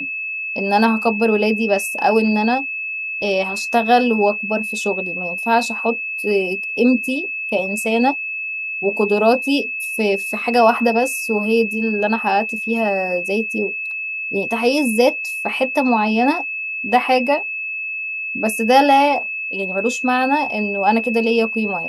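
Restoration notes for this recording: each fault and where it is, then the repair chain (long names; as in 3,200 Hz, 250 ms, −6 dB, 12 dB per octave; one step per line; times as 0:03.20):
whistle 2,600 Hz −23 dBFS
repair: notch filter 2,600 Hz, Q 30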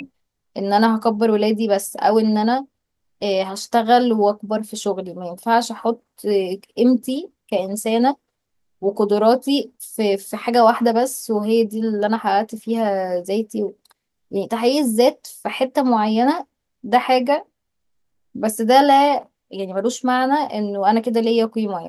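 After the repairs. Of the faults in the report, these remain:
none of them is left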